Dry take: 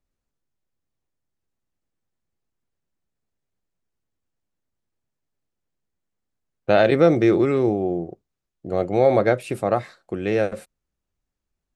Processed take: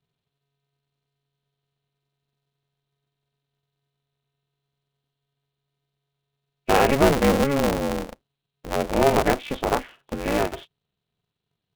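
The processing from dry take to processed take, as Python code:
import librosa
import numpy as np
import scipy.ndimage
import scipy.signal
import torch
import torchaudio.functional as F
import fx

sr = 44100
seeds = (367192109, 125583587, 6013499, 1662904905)

y = fx.freq_compress(x, sr, knee_hz=2400.0, ratio=4.0)
y = y * np.sign(np.sin(2.0 * np.pi * 140.0 * np.arange(len(y)) / sr))
y = F.gain(torch.from_numpy(y), -2.0).numpy()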